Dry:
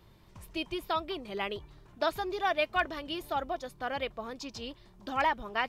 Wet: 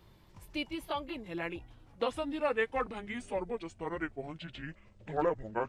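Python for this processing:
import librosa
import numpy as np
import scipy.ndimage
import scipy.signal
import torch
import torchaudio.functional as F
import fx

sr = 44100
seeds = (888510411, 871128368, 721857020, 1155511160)

y = fx.pitch_glide(x, sr, semitones=-11.5, runs='starting unshifted')
y = y * librosa.db_to_amplitude(-1.0)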